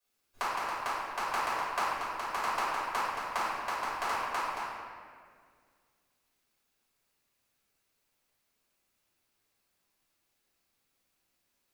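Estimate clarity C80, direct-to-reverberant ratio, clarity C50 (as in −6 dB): −0.5 dB, −13.5 dB, −3.0 dB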